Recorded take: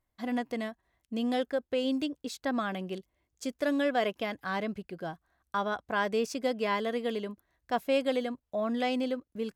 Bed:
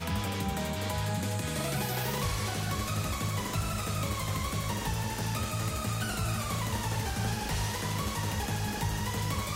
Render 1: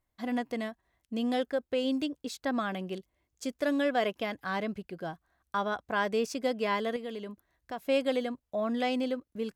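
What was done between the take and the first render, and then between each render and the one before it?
6.96–7.85 compressor 2:1, threshold -39 dBFS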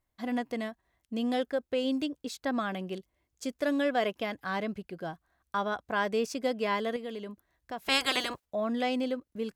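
7.84–8.44 spectral limiter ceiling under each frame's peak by 29 dB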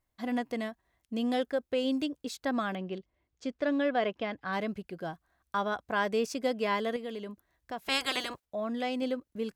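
2.75–4.53 air absorption 150 m; 7.8–9.02 gain -3 dB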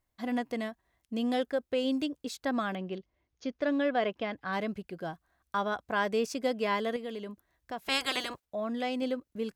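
2.96–3.61 brick-wall FIR low-pass 6800 Hz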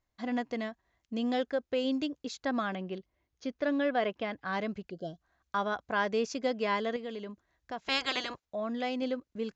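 Chebyshev low-pass 7300 Hz, order 8; 4.9–5.2 spectral gain 720–2800 Hz -23 dB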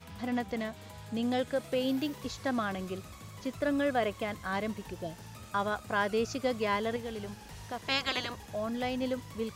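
add bed -15.5 dB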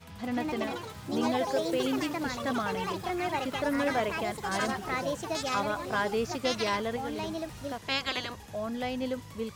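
echoes that change speed 0.19 s, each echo +4 st, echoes 3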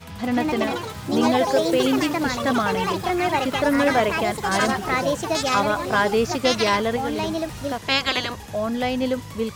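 gain +9.5 dB

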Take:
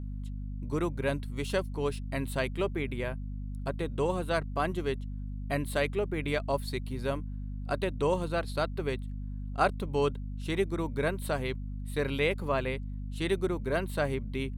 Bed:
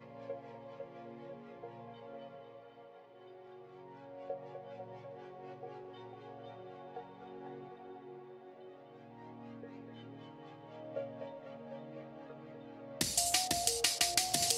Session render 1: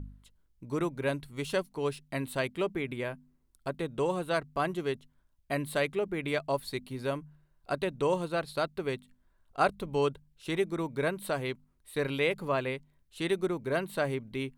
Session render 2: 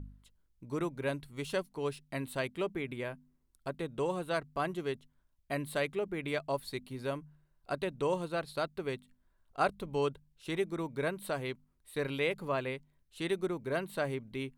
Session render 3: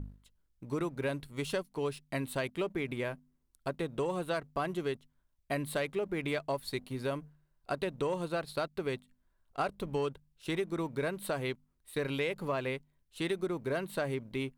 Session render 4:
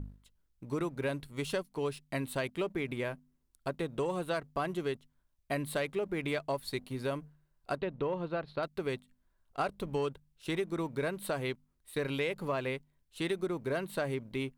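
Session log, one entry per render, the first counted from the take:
de-hum 50 Hz, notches 5
gain -3.5 dB
sample leveller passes 1; compressor, threshold -29 dBFS, peak gain reduction 7.5 dB
7.77–8.63 air absorption 280 m

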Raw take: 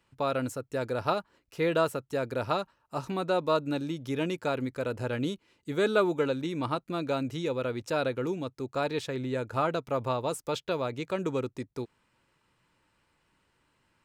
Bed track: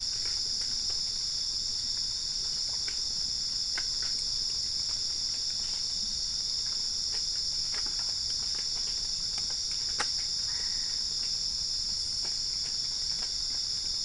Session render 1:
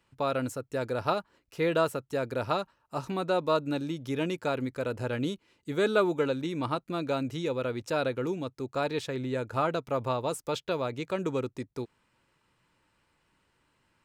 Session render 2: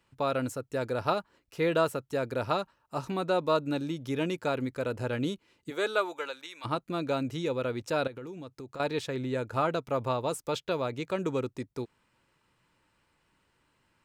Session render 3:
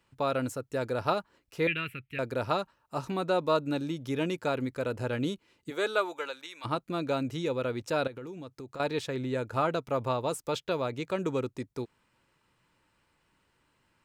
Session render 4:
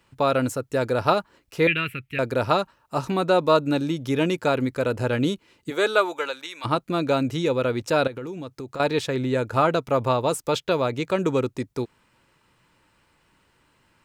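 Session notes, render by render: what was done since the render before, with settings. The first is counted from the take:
nothing audible
5.69–6.64 HPF 400 Hz -> 1500 Hz; 8.07–8.8 compressor 10:1, threshold -38 dBFS
1.67–2.19 EQ curve 120 Hz 0 dB, 380 Hz -11 dB, 550 Hz -24 dB, 790 Hz -27 dB, 2400 Hz +14 dB, 3900 Hz -8 dB, 6400 Hz -26 dB, 12000 Hz -9 dB
gain +8 dB

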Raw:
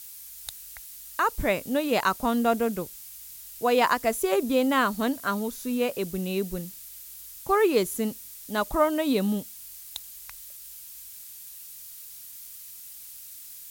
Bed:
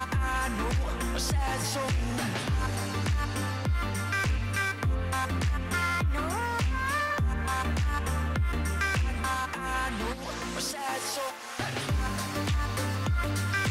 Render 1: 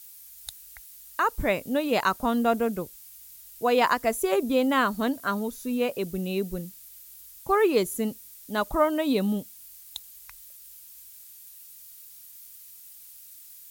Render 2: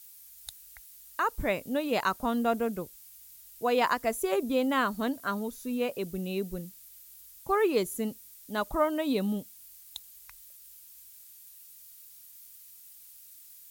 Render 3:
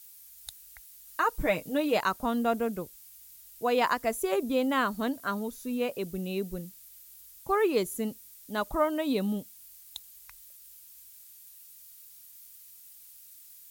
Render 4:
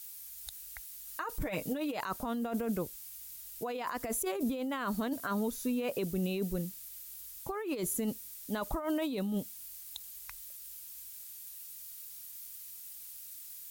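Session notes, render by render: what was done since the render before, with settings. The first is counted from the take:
denoiser 6 dB, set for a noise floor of -44 dBFS
gain -4 dB
1.07–1.97 comb 6.4 ms
negative-ratio compressor -33 dBFS, ratio -1; limiter -24 dBFS, peak gain reduction 8 dB

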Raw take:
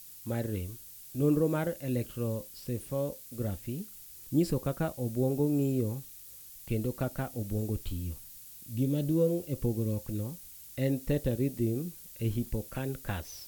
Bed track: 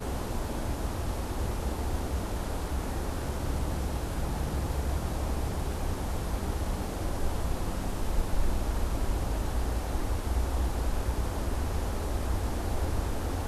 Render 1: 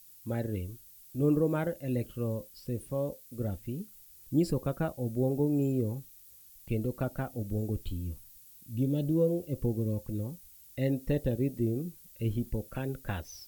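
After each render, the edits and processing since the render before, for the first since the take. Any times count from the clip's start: denoiser 8 dB, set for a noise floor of -49 dBFS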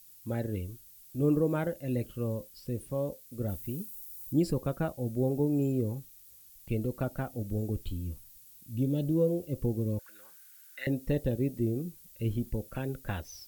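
3.48–4.33 high shelf 9400 Hz +11.5 dB; 9.99–10.87 resonant high-pass 1500 Hz, resonance Q 9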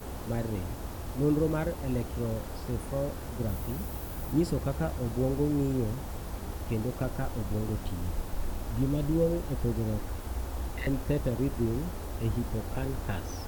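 add bed track -6 dB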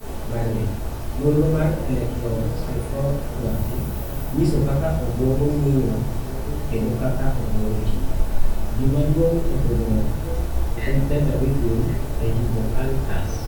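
echo 1.066 s -14.5 dB; shoebox room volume 89 m³, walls mixed, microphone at 1.6 m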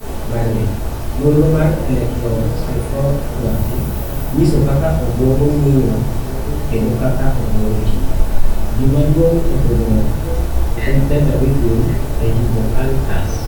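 gain +6.5 dB; limiter -1 dBFS, peak gain reduction 2 dB

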